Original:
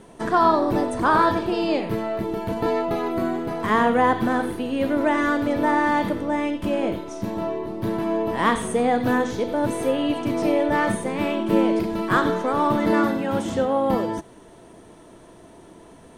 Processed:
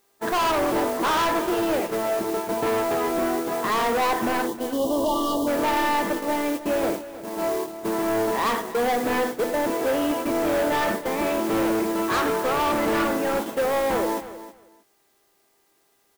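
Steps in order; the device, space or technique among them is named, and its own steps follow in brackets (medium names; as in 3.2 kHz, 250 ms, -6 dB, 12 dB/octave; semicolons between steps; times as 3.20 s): aircraft radio (band-pass 330–2300 Hz; hard clipper -24 dBFS, distortion -6 dB; mains buzz 400 Hz, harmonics 5, -48 dBFS -4 dB/octave; white noise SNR 15 dB; gate -30 dBFS, range -28 dB); time-frequency box 4.47–5.47 s, 1.2–2.8 kHz -30 dB; feedback delay 314 ms, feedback 17%, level -14.5 dB; trim +4 dB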